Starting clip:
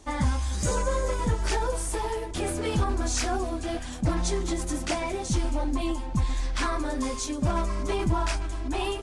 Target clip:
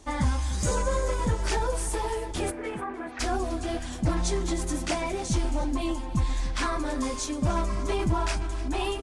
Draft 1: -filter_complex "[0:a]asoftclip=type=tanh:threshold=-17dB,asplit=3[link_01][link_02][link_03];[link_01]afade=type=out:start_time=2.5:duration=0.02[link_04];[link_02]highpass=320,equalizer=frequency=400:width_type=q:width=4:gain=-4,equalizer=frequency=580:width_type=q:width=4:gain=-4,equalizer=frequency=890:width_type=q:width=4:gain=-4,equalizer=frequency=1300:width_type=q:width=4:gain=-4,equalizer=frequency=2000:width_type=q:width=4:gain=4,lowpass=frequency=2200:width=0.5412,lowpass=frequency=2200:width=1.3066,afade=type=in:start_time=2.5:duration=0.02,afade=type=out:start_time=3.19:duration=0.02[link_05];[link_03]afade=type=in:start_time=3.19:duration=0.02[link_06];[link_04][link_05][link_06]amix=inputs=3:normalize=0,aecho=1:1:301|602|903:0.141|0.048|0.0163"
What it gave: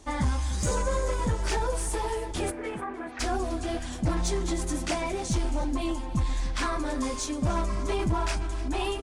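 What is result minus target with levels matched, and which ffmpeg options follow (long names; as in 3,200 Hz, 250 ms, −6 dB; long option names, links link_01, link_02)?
soft clipping: distortion +17 dB
-filter_complex "[0:a]asoftclip=type=tanh:threshold=-7.5dB,asplit=3[link_01][link_02][link_03];[link_01]afade=type=out:start_time=2.5:duration=0.02[link_04];[link_02]highpass=320,equalizer=frequency=400:width_type=q:width=4:gain=-4,equalizer=frequency=580:width_type=q:width=4:gain=-4,equalizer=frequency=890:width_type=q:width=4:gain=-4,equalizer=frequency=1300:width_type=q:width=4:gain=-4,equalizer=frequency=2000:width_type=q:width=4:gain=4,lowpass=frequency=2200:width=0.5412,lowpass=frequency=2200:width=1.3066,afade=type=in:start_time=2.5:duration=0.02,afade=type=out:start_time=3.19:duration=0.02[link_05];[link_03]afade=type=in:start_time=3.19:duration=0.02[link_06];[link_04][link_05][link_06]amix=inputs=3:normalize=0,aecho=1:1:301|602|903:0.141|0.048|0.0163"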